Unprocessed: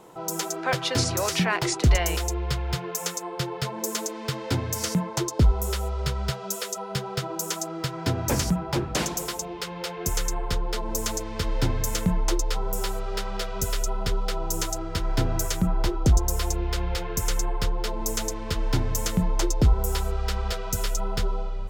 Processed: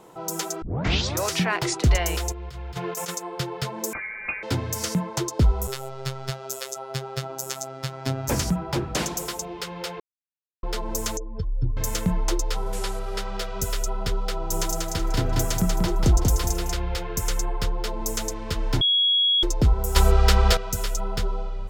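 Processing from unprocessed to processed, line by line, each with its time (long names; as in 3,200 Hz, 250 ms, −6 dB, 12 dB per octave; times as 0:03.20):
0:00.62: tape start 0.57 s
0:02.32–0:03.15: compressor whose output falls as the input rises −31 dBFS, ratio −0.5
0:03.93–0:04.43: voice inversion scrambler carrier 2,600 Hz
0:05.67–0:08.29: phases set to zero 133 Hz
0:10.00–0:10.63: silence
0:11.17–0:11.77: expanding power law on the bin magnitudes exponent 2.3
0:12.55–0:13.19: variable-slope delta modulation 64 kbit/s
0:14.33–0:16.74: repeating echo 189 ms, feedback 28%, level −3 dB
0:18.81–0:19.43: beep over 3,330 Hz −17 dBFS
0:19.96–0:20.57: clip gain +10 dB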